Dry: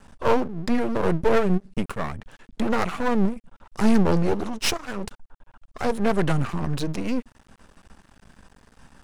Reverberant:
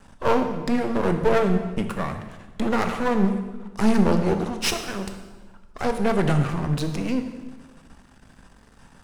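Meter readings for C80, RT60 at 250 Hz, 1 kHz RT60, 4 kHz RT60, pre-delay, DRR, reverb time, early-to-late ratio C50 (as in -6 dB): 10.0 dB, 1.5 s, 1.2 s, 1.1 s, 16 ms, 6.0 dB, 1.3 s, 8.0 dB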